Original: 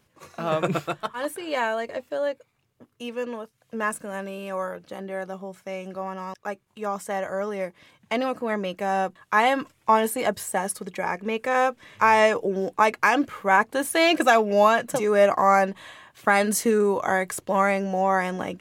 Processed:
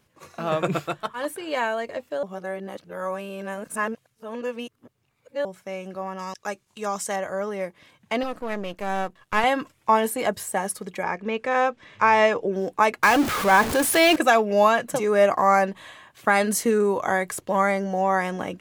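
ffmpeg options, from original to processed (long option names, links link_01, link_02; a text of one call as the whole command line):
ffmpeg -i in.wav -filter_complex "[0:a]asettb=1/sr,asplit=3[link_01][link_02][link_03];[link_01]atrim=end=6.194[link_04];[link_02]atrim=start=6.19:end=7.16,asetpts=PTS-STARTPTS,afade=type=in:duration=0.004:curve=qsin,afade=type=out:start_time=0.966:duration=0.004:curve=qsin,equalizer=frequency=6300:width=0.58:gain=11.5[link_05];[link_03]atrim=start=7.156[link_06];[link_04][link_05]acrossfade=duration=0.004:curve1=hsin:curve2=qsin[link_07];[link_07][link_06]acrossfade=duration=0.004:curve1=qsin:curve2=hsin,asettb=1/sr,asplit=3[link_08][link_09][link_10];[link_08]atrim=end=8.234[link_11];[link_09]atrim=start=8.23:end=9.44,asetpts=PTS-STARTPTS,afade=type=in:duration=0.004:curve=qsin,afade=type=out:start_time=1.206:duration=0.004:curve=qsin,aeval=exprs='if(lt(val(0),0),0.251*val(0),val(0))':channel_layout=same[link_12];[link_10]atrim=start=9.436[link_13];[link_11][link_12]acrossfade=duration=0.004:curve1=hsin:curve2=qsin[link_14];[link_14][link_13]acrossfade=duration=0.004:curve1=qsin:curve2=hsin,asettb=1/sr,asplit=3[link_15][link_16][link_17];[link_15]atrim=end=11.034[link_18];[link_16]atrim=start=11.03:end=12.53,asetpts=PTS-STARTPTS,afade=type=in:duration=0.004:curve=qsin,afade=type=out:start_time=1.496:duration=0.004:curve=qsin,lowpass=5700[link_19];[link_17]atrim=start=12.526[link_20];[link_18][link_19]acrossfade=duration=0.004:curve1=hsin:curve2=qsin[link_21];[link_21][link_20]acrossfade=duration=0.004:curve1=qsin:curve2=hsin,asettb=1/sr,asplit=3[link_22][link_23][link_24];[link_22]atrim=end=13.034[link_25];[link_23]atrim=start=13.03:end=14.16,asetpts=PTS-STARTPTS,afade=type=in:duration=0.004:curve=qsin,afade=type=out:start_time=1.126:duration=0.004:curve=qsin,aeval=exprs='val(0)+0.5*0.0841*sgn(val(0))':channel_layout=same[link_26];[link_24]atrim=start=14.156[link_27];[link_25][link_26]acrossfade=duration=0.004:curve1=hsin:curve2=qsin[link_28];[link_28][link_27]acrossfade=duration=0.004:curve1=qsin:curve2=hsin,asettb=1/sr,asplit=3[link_29][link_30][link_31];[link_29]atrim=end=17.554[link_32];[link_30]atrim=start=17.55:end=17.99,asetpts=PTS-STARTPTS,afade=type=in:duration=0.004:curve=qsin,afade=type=out:start_time=0.436:duration=0.004:curve=qsin,asuperstop=centerf=2600:order=4:qfactor=5.5[link_33];[link_31]atrim=start=17.986[link_34];[link_32][link_33]acrossfade=duration=0.004:curve1=hsin:curve2=qsin[link_35];[link_35][link_34]acrossfade=duration=0.004:curve1=qsin:curve2=hsin,asplit=3[link_36][link_37][link_38];[link_36]atrim=end=2.232[link_39];[link_37]atrim=start=2.228:end=5.452,asetpts=PTS-STARTPTS,areverse[link_40];[link_38]atrim=start=5.448[link_41];[link_39][link_40]acrossfade=duration=0.004:curve1=hsin:curve2=hsin[link_42];[link_42][link_41]acrossfade=duration=0.004:curve1=hsin:curve2=hsin" out.wav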